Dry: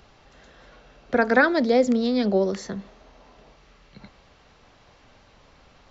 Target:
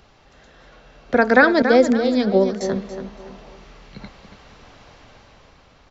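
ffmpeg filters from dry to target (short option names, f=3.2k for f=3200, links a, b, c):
-filter_complex "[0:a]asettb=1/sr,asplit=3[a][b][c];[a]atrim=end=1.624[d];[b]atrim=start=1.62:end=2.61,asetpts=PTS-STARTPTS,afade=t=in:d=0.004:c=qsin,afade=t=out:st=0.986:d=0.004:c=qsin,agate=range=-33dB:threshold=-18dB:ratio=3:detection=peak[e];[c]atrim=start=2.606[f];[d][e]acrossfade=d=0.004:c1=hsin:c2=qsin[g];[g][f]acrossfade=d=0.004:c1=qsin:c2=hsin,dynaudnorm=f=270:g=7:m=7dB,asplit=2[h][i];[i]adelay=282,lowpass=f=3.8k:p=1,volume=-9dB,asplit=2[j][k];[k]adelay=282,lowpass=f=3.8k:p=1,volume=0.38,asplit=2[l][m];[m]adelay=282,lowpass=f=3.8k:p=1,volume=0.38,asplit=2[n][o];[o]adelay=282,lowpass=f=3.8k:p=1,volume=0.38[p];[h][j][l][n][p]amix=inputs=5:normalize=0,volume=1dB"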